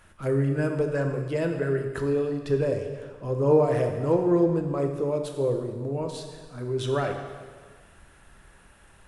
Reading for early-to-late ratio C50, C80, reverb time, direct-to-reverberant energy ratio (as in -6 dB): 6.0 dB, 7.0 dB, 1.6 s, 4.0 dB